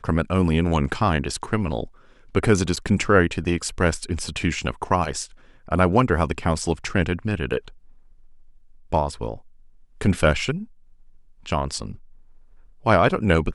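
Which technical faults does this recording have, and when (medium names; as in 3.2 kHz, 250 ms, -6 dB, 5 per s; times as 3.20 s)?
2.76–2.77 s: dropout 7 ms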